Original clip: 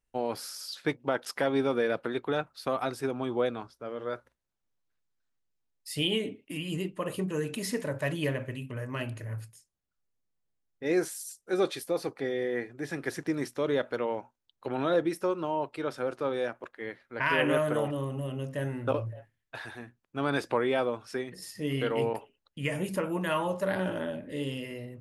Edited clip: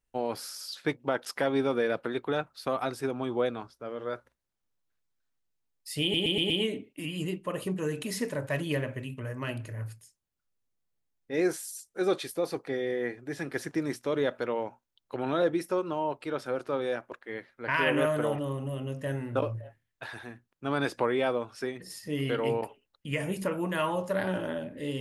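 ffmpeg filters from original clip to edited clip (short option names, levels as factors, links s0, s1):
-filter_complex "[0:a]asplit=5[s0][s1][s2][s3][s4];[s0]atrim=end=6.142[s5];[s1]atrim=start=6.018:end=6.142[s6];[s2]atrim=start=6.018:end=6.142[s7];[s3]atrim=start=6.018:end=6.142[s8];[s4]atrim=start=6.018[s9];[s5][s6]acrossfade=d=0.004:c1=hsin:c2=hsin[s10];[s10][s7]acrossfade=d=0.004:c1=hsin:c2=hsin[s11];[s11][s8]acrossfade=d=0.004:c1=hsin:c2=hsin[s12];[s12][s9]acrossfade=d=0.004:c1=hsin:c2=hsin"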